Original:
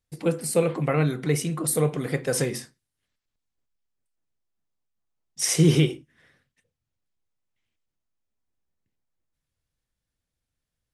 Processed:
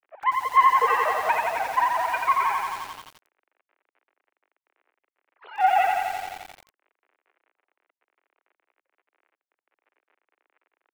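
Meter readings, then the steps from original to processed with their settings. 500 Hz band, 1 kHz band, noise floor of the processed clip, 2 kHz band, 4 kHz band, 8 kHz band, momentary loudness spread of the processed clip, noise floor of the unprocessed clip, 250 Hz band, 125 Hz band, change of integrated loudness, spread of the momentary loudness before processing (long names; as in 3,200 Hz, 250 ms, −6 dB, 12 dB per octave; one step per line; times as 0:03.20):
−6.0 dB, +19.5 dB, below −85 dBFS, +8.0 dB, −6.0 dB, −16.5 dB, 16 LU, −84 dBFS, below −25 dB, below −30 dB, +1.5 dB, 9 LU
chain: three sine waves on the formant tracks
full-wave rectification
surface crackle 55 per second −48 dBFS
single-sideband voice off tune +76 Hz 260–2,400 Hz
feedback echo at a low word length 87 ms, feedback 80%, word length 8 bits, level −3.5 dB
level +5.5 dB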